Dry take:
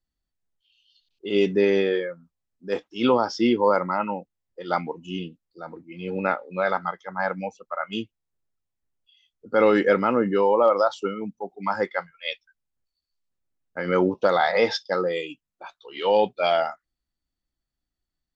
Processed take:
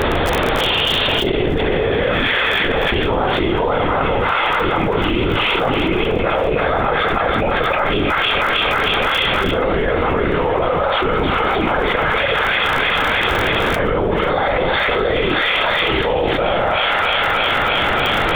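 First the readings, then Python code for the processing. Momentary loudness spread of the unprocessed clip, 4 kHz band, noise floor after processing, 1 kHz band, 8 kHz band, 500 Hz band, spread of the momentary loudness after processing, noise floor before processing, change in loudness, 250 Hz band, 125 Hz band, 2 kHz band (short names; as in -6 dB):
18 LU, +18.0 dB, -18 dBFS, +9.5 dB, n/a, +5.5 dB, 2 LU, -85 dBFS, +7.5 dB, +6.0 dB, +15.0 dB, +15.5 dB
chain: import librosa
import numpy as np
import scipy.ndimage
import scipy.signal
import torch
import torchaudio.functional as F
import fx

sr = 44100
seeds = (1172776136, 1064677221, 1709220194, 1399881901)

p1 = fx.bin_compress(x, sr, power=0.4)
p2 = fx.auto_swell(p1, sr, attack_ms=123.0)
p3 = fx.lpc_vocoder(p2, sr, seeds[0], excitation='whisper', order=16)
p4 = p3 + 10.0 ** (-13.5 / 20.0) * np.pad(p3, (int(71 * sr / 1000.0), 0))[:len(p3)]
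p5 = fx.dmg_crackle(p4, sr, seeds[1], per_s=22.0, level_db=-36.0)
p6 = p5 + fx.echo_wet_highpass(p5, sr, ms=314, feedback_pct=70, hz=1500.0, wet_db=-4.0, dry=0)
p7 = fx.env_flatten(p6, sr, amount_pct=100)
y = F.gain(torch.from_numpy(p7), -5.5).numpy()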